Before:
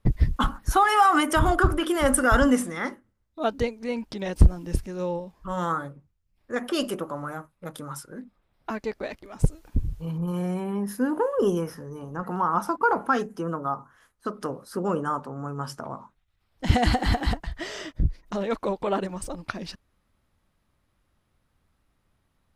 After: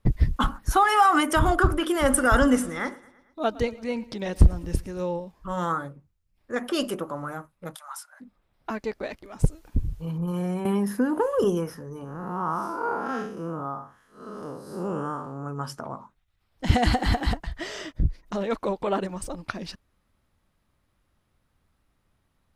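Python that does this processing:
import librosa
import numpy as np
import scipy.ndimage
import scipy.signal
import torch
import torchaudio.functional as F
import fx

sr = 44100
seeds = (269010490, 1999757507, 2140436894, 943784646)

y = fx.echo_feedback(x, sr, ms=112, feedback_pct=57, wet_db=-20.5, at=(2.09, 5.0), fade=0.02)
y = fx.steep_highpass(y, sr, hz=640.0, slope=96, at=(7.74, 8.2), fade=0.02)
y = fx.band_squash(y, sr, depth_pct=100, at=(10.65, 11.44))
y = fx.spec_blur(y, sr, span_ms=174.0, at=(12.04, 15.45), fade=0.02)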